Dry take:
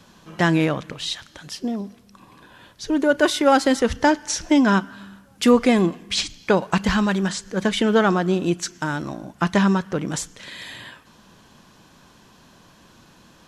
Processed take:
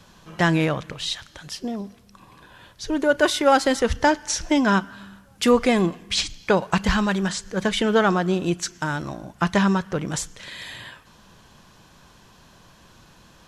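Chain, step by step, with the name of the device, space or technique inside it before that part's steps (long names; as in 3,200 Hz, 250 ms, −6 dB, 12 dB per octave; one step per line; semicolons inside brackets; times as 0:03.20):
low shelf boost with a cut just above (low-shelf EQ 79 Hz +7 dB; parametric band 260 Hz −5 dB 0.94 octaves)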